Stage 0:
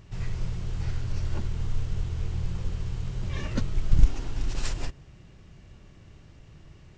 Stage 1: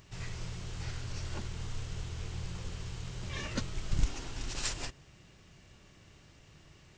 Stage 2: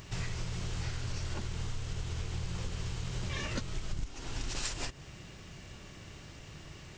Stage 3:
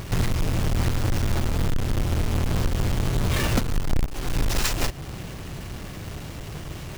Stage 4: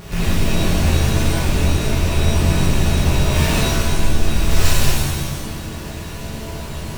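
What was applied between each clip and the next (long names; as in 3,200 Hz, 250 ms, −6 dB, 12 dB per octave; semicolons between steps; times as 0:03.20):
spectral tilt +2 dB per octave; level −2 dB
downward compressor 8 to 1, threshold −41 dBFS, peak gain reduction 20.5 dB; level +9 dB
each half-wave held at its own peak; level +8.5 dB
loose part that buzzes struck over −25 dBFS, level −23 dBFS; reverb with rising layers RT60 1.2 s, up +7 semitones, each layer −2 dB, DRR −7 dB; level −4 dB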